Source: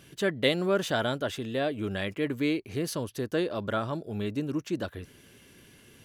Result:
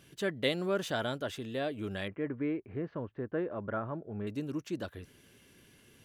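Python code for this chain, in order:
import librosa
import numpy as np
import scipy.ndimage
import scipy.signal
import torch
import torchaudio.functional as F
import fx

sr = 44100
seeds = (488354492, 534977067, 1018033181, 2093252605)

y = fx.lowpass(x, sr, hz=1900.0, slope=24, at=(2.08, 4.27))
y = y * 10.0 ** (-5.5 / 20.0)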